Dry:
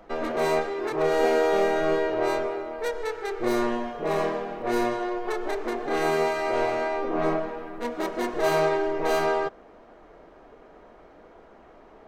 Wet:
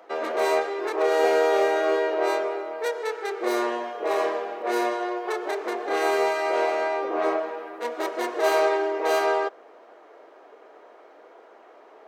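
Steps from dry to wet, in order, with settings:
high-pass filter 360 Hz 24 dB per octave
level +2 dB

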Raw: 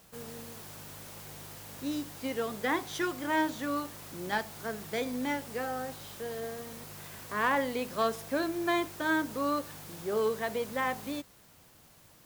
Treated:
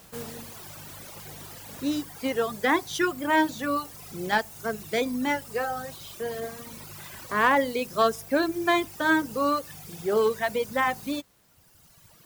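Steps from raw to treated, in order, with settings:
reverb reduction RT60 1.9 s
level +7.5 dB

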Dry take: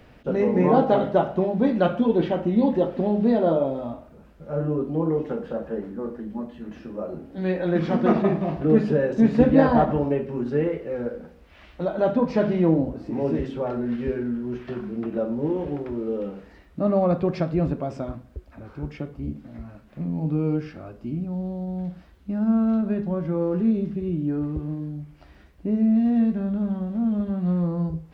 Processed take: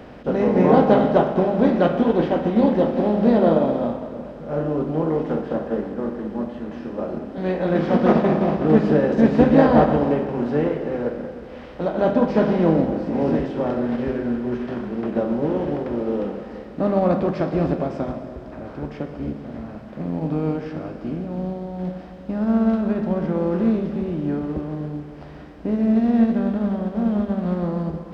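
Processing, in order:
compressor on every frequency bin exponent 0.6
pitch vibrato 2 Hz 7.9 cents
comb and all-pass reverb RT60 2.8 s, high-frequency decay 0.85×, pre-delay 80 ms, DRR 7 dB
expander for the loud parts 1.5 to 1, over −25 dBFS
level +1 dB

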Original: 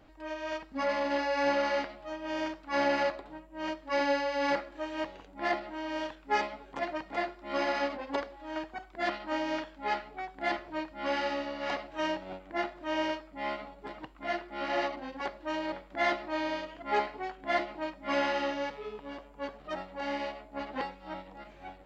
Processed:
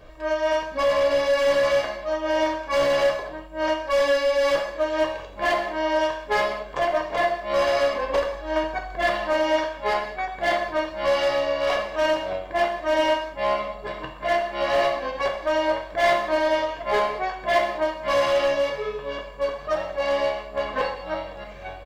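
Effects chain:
0:07.94–0:09.18: low-shelf EQ 130 Hz +7.5 dB
comb filter 1.8 ms, depth 69%
dynamic equaliser 780 Hz, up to +5 dB, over −41 dBFS, Q 1.2
in parallel at +1 dB: downward compressor, threshold −32 dBFS, peak gain reduction 13 dB
on the sum: hard clipping −20 dBFS, distortion −13 dB
on a send at −1.5 dB: convolution reverb, pre-delay 3 ms
on the sum: level +1.5 dB

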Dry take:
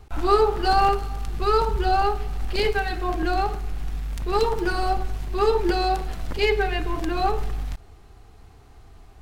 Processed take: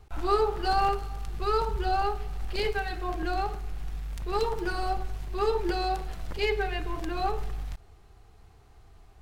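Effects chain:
parametric band 260 Hz −5.5 dB 0.39 octaves
level −6 dB

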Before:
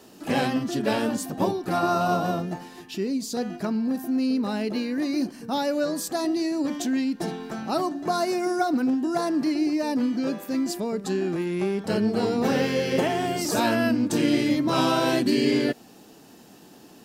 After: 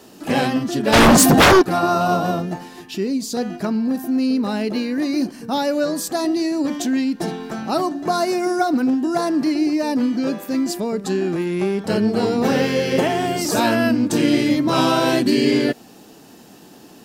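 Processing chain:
0:00.92–0:01.61: sine wavefolder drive 12 dB → 17 dB, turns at −12 dBFS
level +5 dB

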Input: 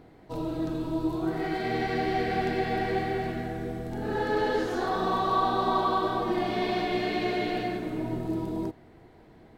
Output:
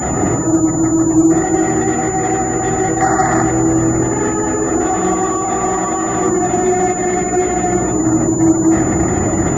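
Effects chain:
sign of each sample alone
0:03.00–0:03.42: flat-topped bell 1,100 Hz +8.5 dB
gate on every frequency bin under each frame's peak −20 dB strong
convolution reverb RT60 1.2 s, pre-delay 3 ms, DRR 2.5 dB
switching amplifier with a slow clock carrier 7,000 Hz
level −4.5 dB

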